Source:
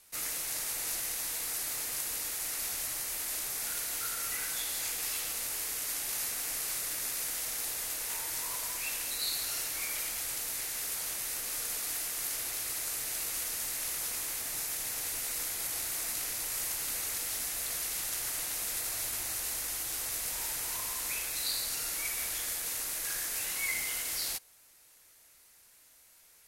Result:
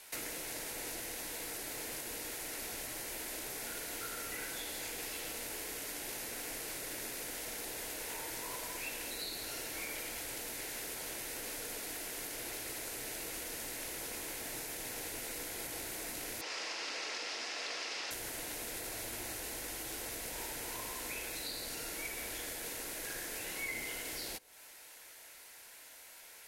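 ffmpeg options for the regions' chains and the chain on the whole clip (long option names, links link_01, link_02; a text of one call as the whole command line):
ffmpeg -i in.wav -filter_complex "[0:a]asettb=1/sr,asplit=3[link_01][link_02][link_03];[link_01]atrim=end=16.414[link_04];[link_02]atrim=start=16.41:end=18.11,asetpts=PTS-STARTPTS,afade=type=in:duration=0.004:curve=qsin,afade=type=out:start_time=1.696:duration=0.004:curve=qsin,highpass=360,equalizer=frequency=1200:width_type=q:width=4:gain=6,equalizer=frequency=2700:width_type=q:width=4:gain=4,equalizer=frequency=5100:width_type=q:width=4:gain=7,lowpass=frequency=5900:width=0.5412,lowpass=frequency=5900:width=1.3066,bandreject=frequency=1500:width=29[link_05];[link_03]atrim=start=18.106[link_06];[link_04][link_05]acrossfade=duration=0.004:curve1=hsin:curve2=qsin[link_07];[link_07][link_06]acrossfade=duration=0.004:curve1=qsin:curve2=hsin,bandreject=frequency=1200:width=7.2,acrossover=split=440[link_08][link_09];[link_09]acompressor=threshold=-46dB:ratio=10[link_10];[link_08][link_10]amix=inputs=2:normalize=0,bass=frequency=250:gain=-12,treble=frequency=4000:gain=-7,volume=11.5dB" out.wav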